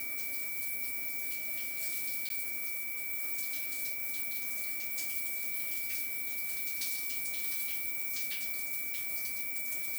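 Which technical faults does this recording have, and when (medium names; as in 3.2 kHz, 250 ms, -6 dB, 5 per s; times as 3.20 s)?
whine 2.3 kHz -40 dBFS
2.29–2.30 s: dropout 12 ms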